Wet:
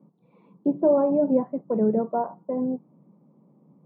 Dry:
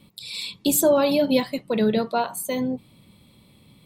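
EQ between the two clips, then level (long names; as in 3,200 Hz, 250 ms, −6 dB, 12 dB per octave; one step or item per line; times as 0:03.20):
elliptic high-pass filter 150 Hz
low-pass filter 1,000 Hz 24 dB per octave
high-frequency loss of the air 260 metres
0.0 dB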